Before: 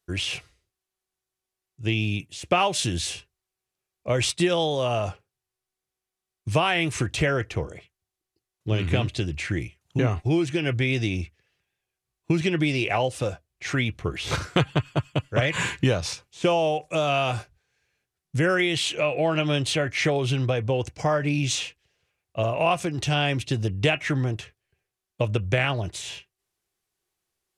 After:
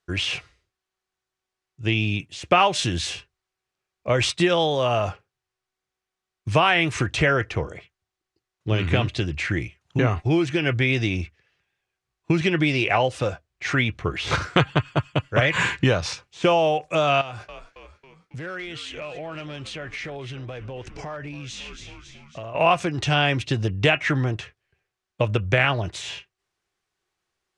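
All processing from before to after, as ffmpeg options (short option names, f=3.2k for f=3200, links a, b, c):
-filter_complex "[0:a]asettb=1/sr,asplit=3[a][b][c];[a]atrim=end=17.214[d];[b]atrim=start=17.21:end=22.55,asetpts=PTS-STARTPTS,afade=t=in:d=0.004:c=qsin,afade=t=out:st=5.336:d=0.004:c=qsin,asoftclip=type=hard:threshold=-16dB,asplit=6[e][f][g][h][i][j];[f]adelay=274,afreqshift=-93,volume=-18dB[k];[g]adelay=548,afreqshift=-186,volume=-23dB[l];[h]adelay=822,afreqshift=-279,volume=-28.1dB[m];[i]adelay=1096,afreqshift=-372,volume=-33.1dB[n];[j]adelay=1370,afreqshift=-465,volume=-38.1dB[o];[e][k][l][m][n][o]amix=inputs=6:normalize=0,atrim=end_sample=235494,acompressor=threshold=-35dB:ratio=6:attack=3.2:release=140:knee=1:detection=peak[p];[c]atrim=start=22.546[q];[d][p]acrossfade=d=0.004:c1=hsin:c2=qsin[r];[r][q]acrossfade=d=0.004:c1=qsin:c2=hsin,lowpass=6.8k,equalizer=f=1.4k:w=0.83:g=5,volume=1.5dB"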